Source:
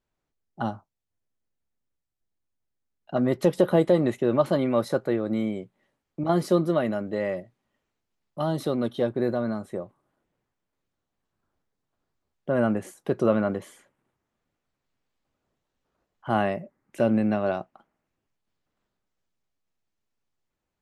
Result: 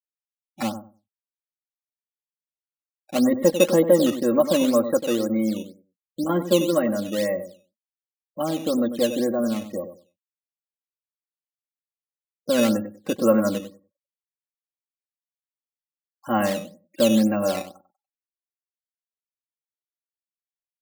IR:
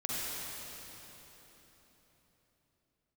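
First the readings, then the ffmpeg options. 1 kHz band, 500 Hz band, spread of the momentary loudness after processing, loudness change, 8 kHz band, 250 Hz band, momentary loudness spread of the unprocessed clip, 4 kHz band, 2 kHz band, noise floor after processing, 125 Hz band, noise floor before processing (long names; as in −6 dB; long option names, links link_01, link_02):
0.0 dB, +3.5 dB, 15 LU, +3.5 dB, +15.5 dB, +4.0 dB, 13 LU, +11.0 dB, +2.5 dB, below −85 dBFS, −3.0 dB, −83 dBFS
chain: -filter_complex "[0:a]aecho=1:1:3.7:0.9,afftfilt=real='re*gte(hypot(re,im),0.0141)':imag='im*gte(hypot(re,im),0.0141)':win_size=1024:overlap=0.75,aresample=8000,aresample=44100,bandreject=frequency=820:width=13,asplit=2[link_01][link_02];[link_02]adelay=96,lowpass=frequency=970:poles=1,volume=-9.5dB,asplit=2[link_03][link_04];[link_04]adelay=96,lowpass=frequency=970:poles=1,volume=0.21,asplit=2[link_05][link_06];[link_06]adelay=96,lowpass=frequency=970:poles=1,volume=0.21[link_07];[link_01][link_03][link_05][link_07]amix=inputs=4:normalize=0,acrusher=samples=8:mix=1:aa=0.000001:lfo=1:lforange=12.8:lforate=2"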